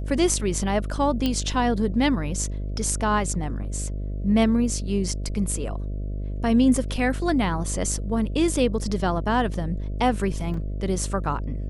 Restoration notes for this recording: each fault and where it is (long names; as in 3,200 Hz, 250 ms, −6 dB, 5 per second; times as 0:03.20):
mains buzz 50 Hz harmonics 13 −29 dBFS
0:01.26: click −11 dBFS
0:10.54: drop-out 3.1 ms